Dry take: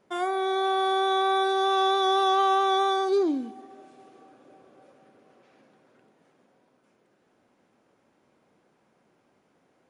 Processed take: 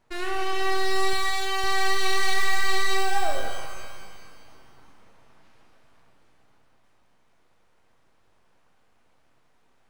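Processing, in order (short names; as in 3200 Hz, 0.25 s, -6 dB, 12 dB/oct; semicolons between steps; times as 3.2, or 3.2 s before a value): full-wave rectifier; 1.13–1.64 low shelf 380 Hz -11.5 dB; shimmer reverb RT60 1.7 s, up +12 st, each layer -8 dB, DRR 2 dB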